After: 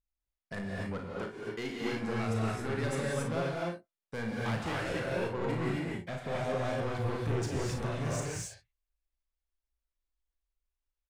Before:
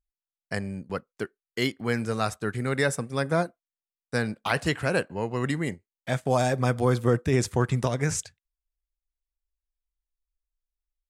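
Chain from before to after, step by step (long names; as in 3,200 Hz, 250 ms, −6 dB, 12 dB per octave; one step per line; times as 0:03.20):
high-shelf EQ 4,900 Hz −11.5 dB
brickwall limiter −17.5 dBFS, peak gain reduction 6.5 dB
soft clipping −29.5 dBFS, distortion −8 dB
on a send: ambience of single reflections 35 ms −7 dB, 54 ms −9 dB
on the sum: reverb whose tail is shaped and stops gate 300 ms rising, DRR −3 dB
level −4 dB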